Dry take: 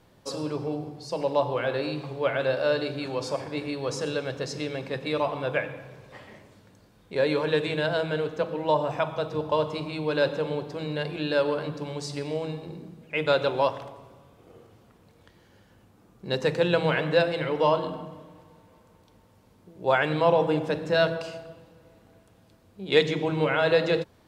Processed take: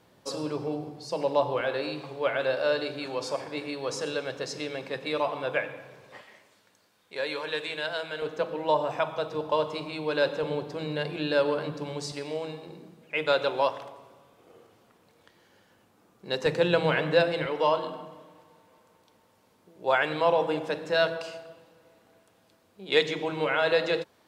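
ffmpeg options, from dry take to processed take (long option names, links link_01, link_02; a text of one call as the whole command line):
ffmpeg -i in.wav -af "asetnsamples=nb_out_samples=441:pad=0,asendcmd='1.61 highpass f 360;6.21 highpass f 1300;8.22 highpass f 330;10.43 highpass f 130;12.12 highpass f 410;16.46 highpass f 130;17.46 highpass f 480',highpass=frequency=170:poles=1" out.wav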